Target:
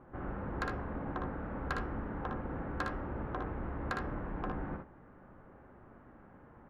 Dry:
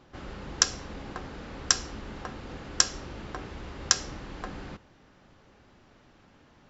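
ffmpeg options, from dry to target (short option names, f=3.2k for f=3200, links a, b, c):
-af "lowpass=f=1.6k:w=0.5412,lowpass=f=1.6k:w=1.3066,asoftclip=type=tanh:threshold=-27.5dB,aecho=1:1:59|76:0.596|0.282,volume=1dB"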